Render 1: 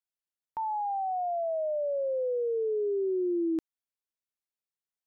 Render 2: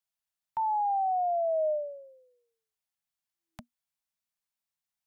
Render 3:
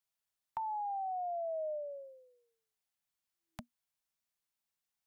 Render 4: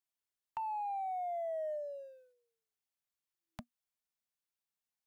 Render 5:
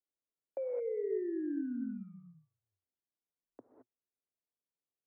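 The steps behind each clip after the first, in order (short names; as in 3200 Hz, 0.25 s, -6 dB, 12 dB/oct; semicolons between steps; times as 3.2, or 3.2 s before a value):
Chebyshev band-stop 240–610 Hz, order 5; gain +3.5 dB
compressor 6:1, threshold -37 dBFS, peak gain reduction 10.5 dB
sample leveller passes 1; gain -3.5 dB
non-linear reverb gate 0.24 s rising, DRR 4 dB; mistuned SSB -360 Hz 490–2300 Hz; low-pass opened by the level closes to 540 Hz, open at -35 dBFS; gain +1 dB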